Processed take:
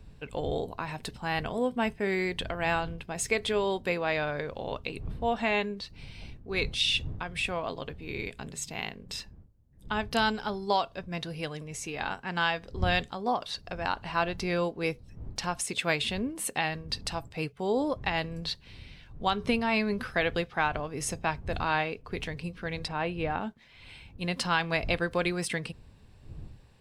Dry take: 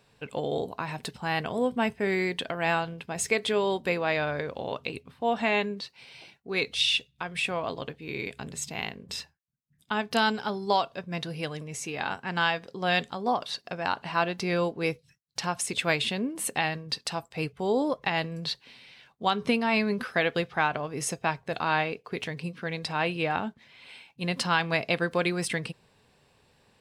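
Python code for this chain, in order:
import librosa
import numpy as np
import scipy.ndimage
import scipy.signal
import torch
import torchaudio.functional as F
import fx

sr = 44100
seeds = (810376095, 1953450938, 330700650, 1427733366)

y = fx.dmg_wind(x, sr, seeds[0], corner_hz=100.0, level_db=-42.0)
y = fx.high_shelf(y, sr, hz=2500.0, db=-10.5, at=(22.88, 23.41))
y = y * 10.0 ** (-2.0 / 20.0)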